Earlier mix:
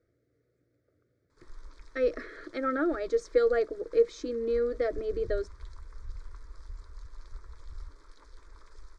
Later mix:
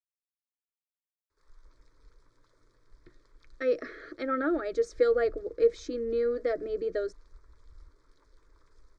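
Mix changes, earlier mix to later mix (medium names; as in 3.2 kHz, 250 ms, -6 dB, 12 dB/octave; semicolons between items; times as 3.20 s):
speech: entry +1.65 s; background -10.0 dB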